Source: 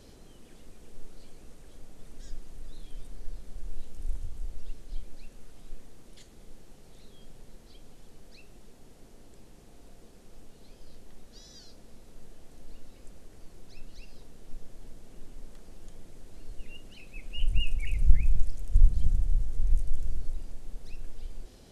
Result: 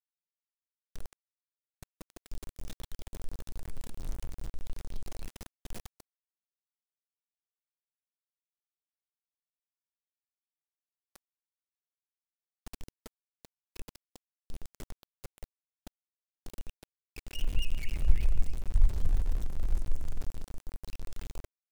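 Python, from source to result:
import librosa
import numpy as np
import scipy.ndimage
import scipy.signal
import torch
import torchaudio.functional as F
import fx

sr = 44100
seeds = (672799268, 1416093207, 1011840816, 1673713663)

y = fx.echo_heads(x, sr, ms=146, heads='first and second', feedback_pct=51, wet_db=-14.5)
y = np.where(np.abs(y) >= 10.0 ** (-32.0 / 20.0), y, 0.0)
y = y * librosa.db_to_amplitude(-4.5)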